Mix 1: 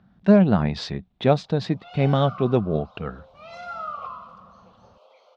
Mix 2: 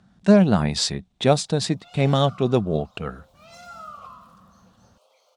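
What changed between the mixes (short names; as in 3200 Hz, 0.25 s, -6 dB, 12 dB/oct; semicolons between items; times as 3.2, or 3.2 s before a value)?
background -8.5 dB; master: remove air absorption 260 m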